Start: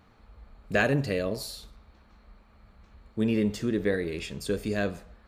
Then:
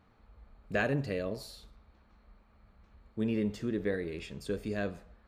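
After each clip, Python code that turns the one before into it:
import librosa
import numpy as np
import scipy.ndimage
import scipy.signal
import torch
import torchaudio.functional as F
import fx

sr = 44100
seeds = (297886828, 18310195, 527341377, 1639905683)

y = fx.high_shelf(x, sr, hz=4300.0, db=-7.0)
y = F.gain(torch.from_numpy(y), -5.5).numpy()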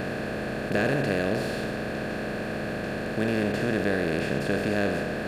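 y = fx.bin_compress(x, sr, power=0.2)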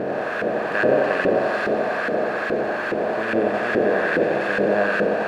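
y = x + 0.5 * 10.0 ** (-33.5 / 20.0) * np.sign(x)
y = fx.echo_thinned(y, sr, ms=89, feedback_pct=81, hz=160.0, wet_db=-3.0)
y = fx.filter_lfo_bandpass(y, sr, shape='saw_up', hz=2.4, low_hz=430.0, high_hz=1500.0, q=1.3)
y = F.gain(torch.from_numpy(y), 7.5).numpy()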